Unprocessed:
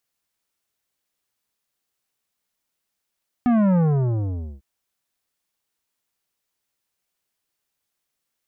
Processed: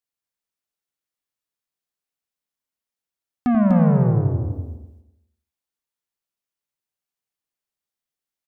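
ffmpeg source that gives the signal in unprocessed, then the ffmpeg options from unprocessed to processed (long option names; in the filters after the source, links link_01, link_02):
-f lavfi -i "aevalsrc='0.158*clip((1.15-t)/0.85,0,1)*tanh(3.98*sin(2*PI*250*1.15/log(65/250)*(exp(log(65/250)*t/1.15)-1)))/tanh(3.98)':duration=1.15:sample_rate=44100"
-filter_complex "[0:a]asplit=2[link_01][link_02];[link_02]adelay=87,lowpass=frequency=2000:poles=1,volume=-5dB,asplit=2[link_03][link_04];[link_04]adelay=87,lowpass=frequency=2000:poles=1,volume=0.36,asplit=2[link_05][link_06];[link_06]adelay=87,lowpass=frequency=2000:poles=1,volume=0.36,asplit=2[link_07][link_08];[link_08]adelay=87,lowpass=frequency=2000:poles=1,volume=0.36[link_09];[link_03][link_05][link_07][link_09]amix=inputs=4:normalize=0[link_10];[link_01][link_10]amix=inputs=2:normalize=0,agate=range=-12dB:threshold=-49dB:ratio=16:detection=peak,asplit=2[link_11][link_12];[link_12]aecho=0:1:247|494|741:0.631|0.0946|0.0142[link_13];[link_11][link_13]amix=inputs=2:normalize=0"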